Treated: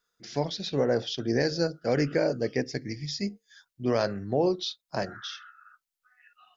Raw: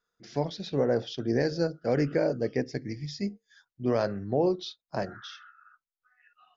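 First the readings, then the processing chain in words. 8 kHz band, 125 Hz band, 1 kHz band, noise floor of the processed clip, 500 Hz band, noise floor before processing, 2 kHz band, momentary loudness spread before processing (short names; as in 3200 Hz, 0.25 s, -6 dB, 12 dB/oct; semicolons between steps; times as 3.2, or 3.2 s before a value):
n/a, 0.0 dB, +1.0 dB, under -85 dBFS, +0.5 dB, under -85 dBFS, +3.5 dB, 10 LU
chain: high shelf 2000 Hz +8 dB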